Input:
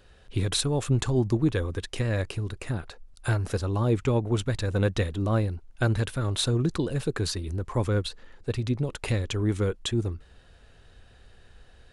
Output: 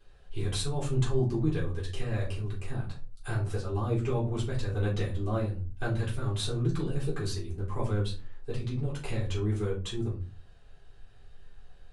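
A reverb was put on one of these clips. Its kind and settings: shoebox room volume 150 m³, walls furnished, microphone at 3.7 m; gain -14 dB

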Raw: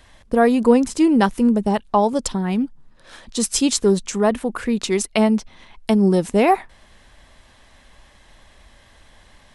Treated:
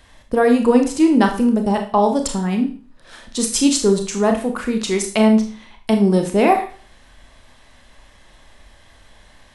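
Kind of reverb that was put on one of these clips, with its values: Schroeder reverb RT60 0.41 s, combs from 25 ms, DRR 4 dB

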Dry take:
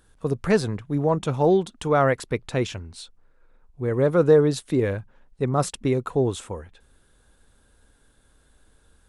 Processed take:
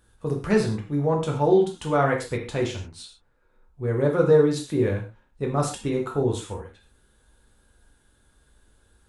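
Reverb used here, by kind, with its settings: non-linear reverb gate 0.16 s falling, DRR -0.5 dB; gain -4.5 dB

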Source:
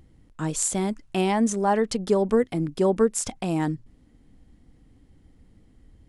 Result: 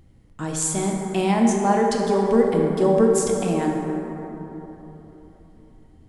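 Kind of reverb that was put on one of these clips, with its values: plate-style reverb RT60 3.7 s, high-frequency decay 0.35×, DRR -0.5 dB

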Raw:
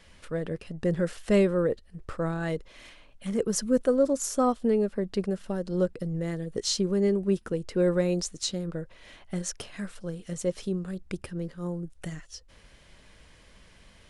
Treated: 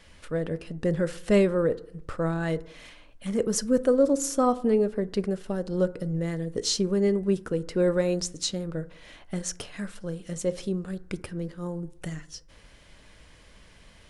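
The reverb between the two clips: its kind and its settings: FDN reverb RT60 0.7 s, low-frequency decay 1×, high-frequency decay 0.35×, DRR 14 dB; gain +1.5 dB

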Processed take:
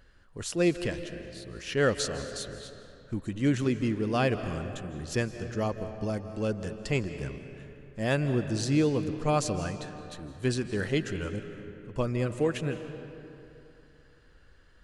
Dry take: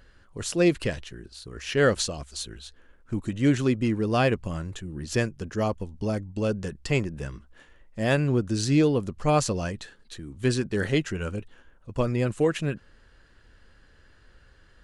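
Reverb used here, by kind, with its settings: digital reverb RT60 2.9 s, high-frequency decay 0.6×, pre-delay 0.12 s, DRR 9.5 dB; gain -4 dB

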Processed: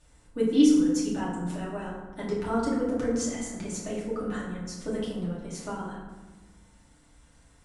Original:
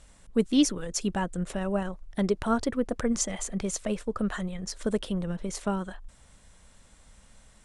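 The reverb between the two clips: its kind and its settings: FDN reverb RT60 1.2 s, low-frequency decay 1.55×, high-frequency decay 0.5×, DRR -8 dB; gain -10.5 dB

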